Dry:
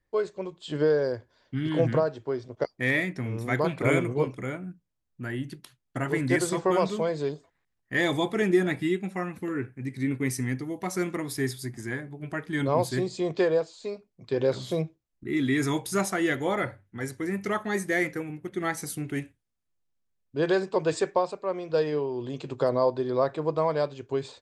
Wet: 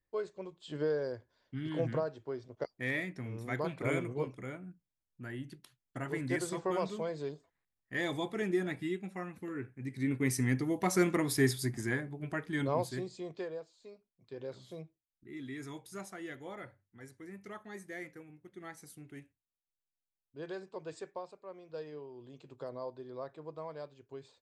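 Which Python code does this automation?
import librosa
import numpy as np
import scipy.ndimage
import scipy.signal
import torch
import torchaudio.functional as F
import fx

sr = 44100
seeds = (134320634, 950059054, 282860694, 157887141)

y = fx.gain(x, sr, db=fx.line((9.55, -9.5), (10.68, 1.0), (11.7, 1.0), (12.63, -6.0), (13.56, -18.0)))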